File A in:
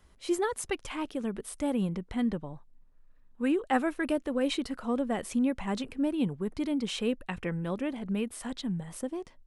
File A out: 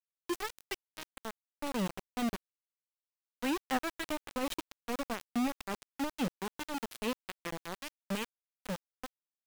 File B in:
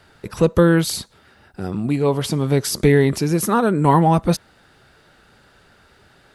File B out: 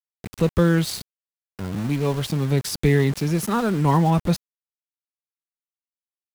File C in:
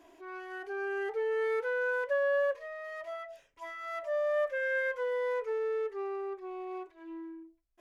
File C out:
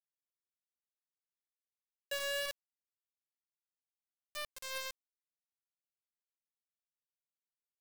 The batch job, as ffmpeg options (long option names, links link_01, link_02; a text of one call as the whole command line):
ffmpeg -i in.wav -filter_complex "[0:a]acrossover=split=210[link_01][link_02];[link_01]acontrast=86[link_03];[link_03][link_02]amix=inputs=2:normalize=0,equalizer=frequency=3200:width=0.67:gain=5,aeval=exprs='val(0)*gte(abs(val(0)),0.0708)':channel_layout=same,volume=-7dB" out.wav